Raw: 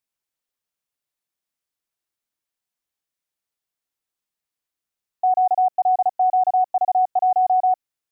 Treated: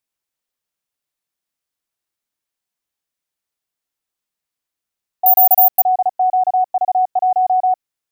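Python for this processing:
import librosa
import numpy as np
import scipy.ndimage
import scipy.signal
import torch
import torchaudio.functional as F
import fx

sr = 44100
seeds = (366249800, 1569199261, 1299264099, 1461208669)

y = fx.resample_bad(x, sr, factor=3, down='filtered', up='zero_stuff', at=(5.26, 5.84))
y = y * librosa.db_to_amplitude(2.5)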